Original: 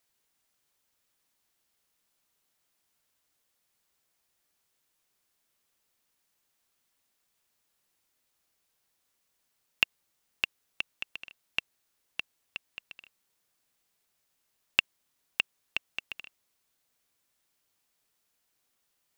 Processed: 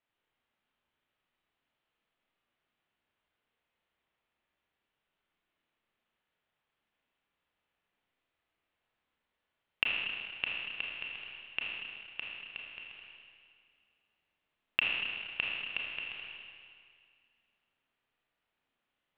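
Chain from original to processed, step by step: steep low-pass 3300 Hz 36 dB/oct; Schroeder reverb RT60 2.1 s, combs from 26 ms, DRR -3 dB; gain -5 dB

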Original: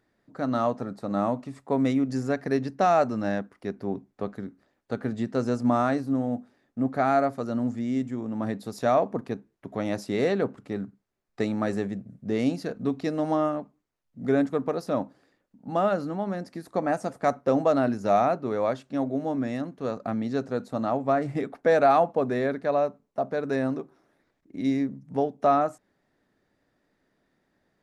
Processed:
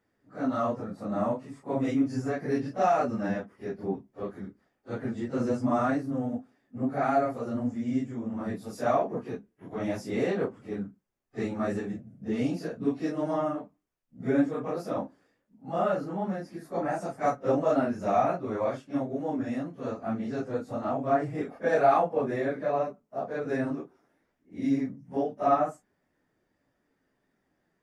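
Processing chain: phase scrambler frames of 0.1 s; bell 4000 Hz -8 dB 0.24 oct; gain -3 dB

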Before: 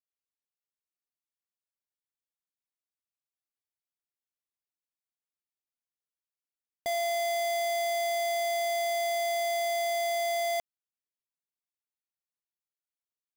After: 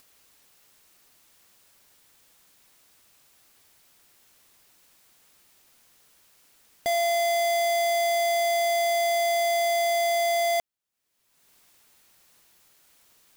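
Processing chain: upward compressor, threshold -42 dBFS; gain +5.5 dB

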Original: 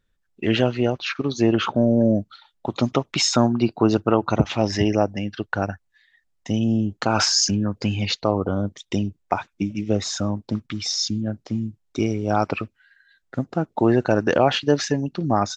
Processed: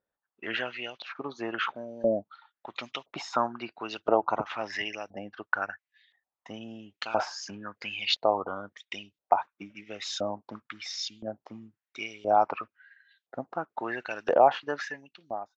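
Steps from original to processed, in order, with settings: ending faded out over 0.92 s; LFO band-pass saw up 0.98 Hz 620–3500 Hz; gain +2 dB

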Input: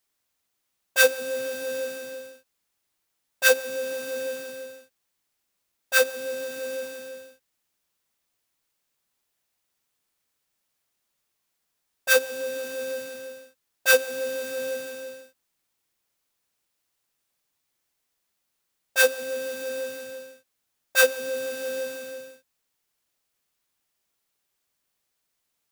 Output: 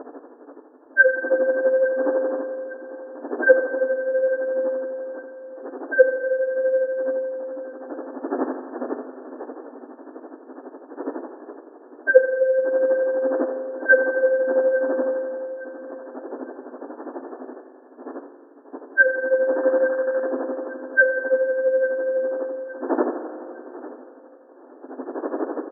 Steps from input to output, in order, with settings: sine-wave speech; wind noise 390 Hz -37 dBFS; in parallel at +1 dB: compressor 6:1, threshold -40 dBFS, peak gain reduction 25 dB; on the sum: companded quantiser 6-bit; tremolo 12 Hz, depth 88%; 19.56–20.26 requantised 6-bit, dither none; FFT band-pass 240–1800 Hz; on a send: feedback echo 0.857 s, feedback 34%, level -18 dB; on the sum: spring tank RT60 2.2 s, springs 42 ms, chirp 35 ms, DRR 8.5 dB; gain +7.5 dB

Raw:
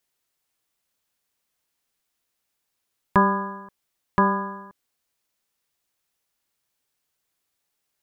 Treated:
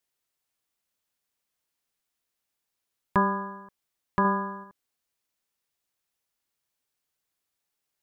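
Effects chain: 4.24–4.64 comb 4.9 ms, depth 46%; gain -5 dB

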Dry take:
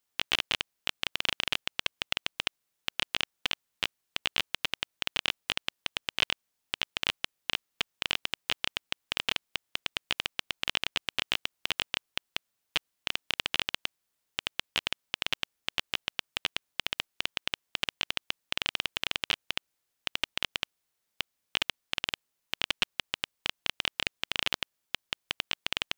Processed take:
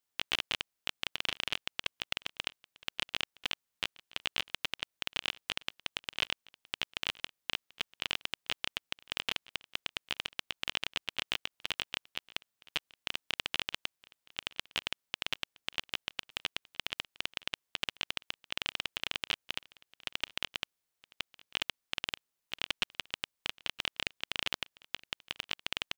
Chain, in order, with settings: echo 0.967 s -23 dB; gain -4.5 dB

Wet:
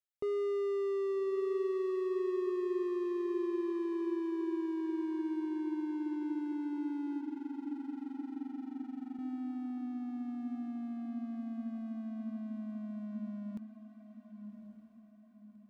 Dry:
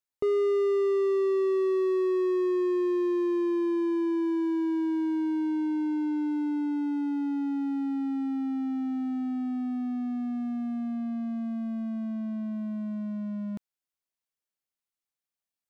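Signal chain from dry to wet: 7.2–9.19 AM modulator 23 Hz, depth 100%; on a send: diffused feedback echo 1.14 s, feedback 44%, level -9.5 dB; on the sum: gain -8.5 dB

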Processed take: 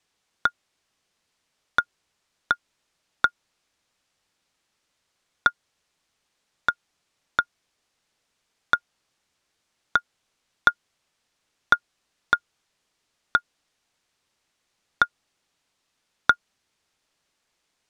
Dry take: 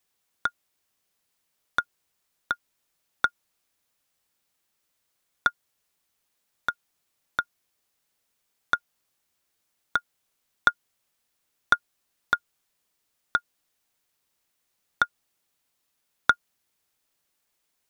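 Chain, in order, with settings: LPF 6700 Hz 12 dB/oct; in parallel at +1.5 dB: limiter -11.5 dBFS, peak gain reduction 8.5 dB; on the sum: gain -1.5 dB

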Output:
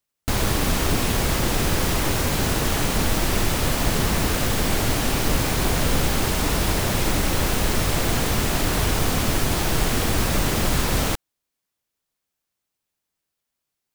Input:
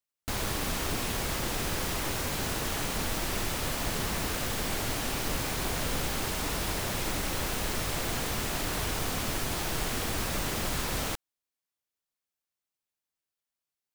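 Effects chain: low shelf 430 Hz +5 dB; gain +7.5 dB

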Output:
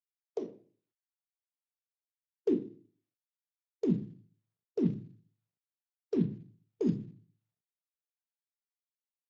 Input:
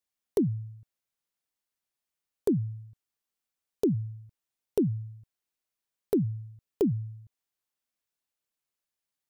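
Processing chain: per-bin expansion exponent 2; high-pass sweep 580 Hz -> 160 Hz, 1.12–4.08; in parallel at -10 dB: soft clip -32.5 dBFS, distortion -5 dB; 4.83–6.21 on the sum: high shelf 3200 Hz +11.5 dB; on a send at -2.5 dB: reverb RT60 0.45 s, pre-delay 4 ms; on the sum: gain -8.5 dB; Speex 17 kbps 16000 Hz

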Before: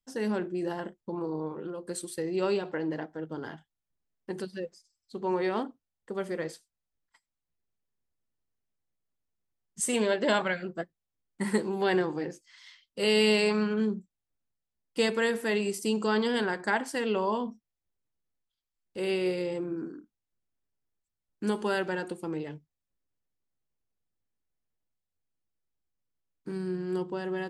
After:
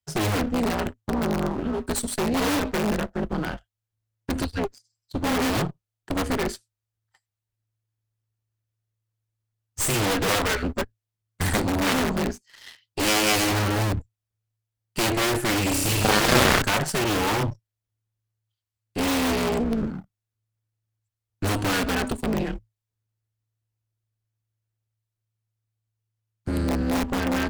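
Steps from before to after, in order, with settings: sample leveller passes 2; 15.66–16.62 flutter echo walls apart 5.7 m, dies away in 1.1 s; frequency shift -110 Hz; in parallel at -4.5 dB: wrapped overs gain 18.5 dB; on the sum: added harmonics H 6 -8 dB, 7 -7 dB, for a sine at -3.5 dBFS; gain -6.5 dB

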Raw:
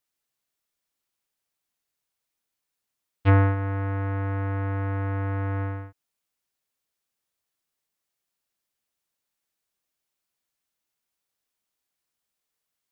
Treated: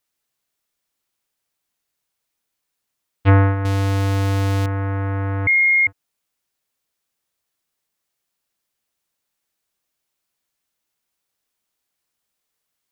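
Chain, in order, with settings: 3.65–4.66 sample leveller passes 5; 5.47–5.87 bleep 2140 Hz -17 dBFS; gain +5 dB

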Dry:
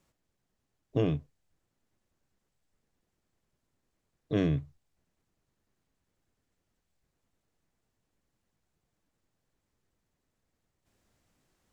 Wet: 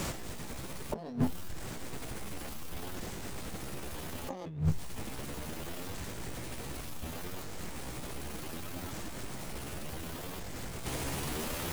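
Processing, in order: repeated pitch sweeps +11 st, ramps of 1.485 s; power-law curve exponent 0.7; negative-ratio compressor -45 dBFS, ratio -1; gain +12 dB

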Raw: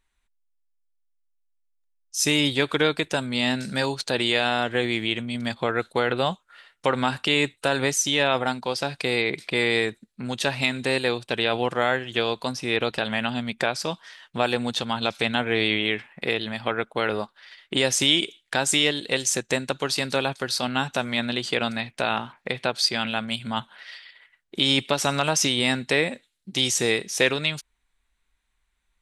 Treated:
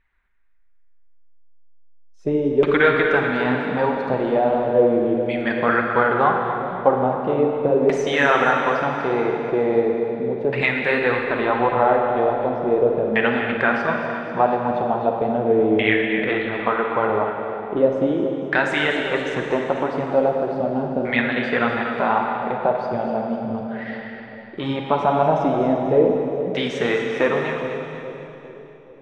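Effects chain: high shelf 10000 Hz +9.5 dB; LFO low-pass saw down 0.38 Hz 410–2000 Hz; split-band echo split 740 Hz, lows 0.413 s, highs 0.246 s, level -9.5 dB; flange 1.7 Hz, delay 0.3 ms, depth 5.5 ms, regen +40%; Schroeder reverb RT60 2.6 s, DRR 2.5 dB; gain +5.5 dB

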